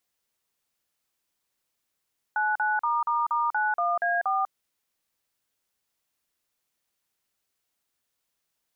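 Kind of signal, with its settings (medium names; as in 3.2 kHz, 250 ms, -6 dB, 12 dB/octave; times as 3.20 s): DTMF "99***91A4", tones 195 ms, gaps 42 ms, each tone -25 dBFS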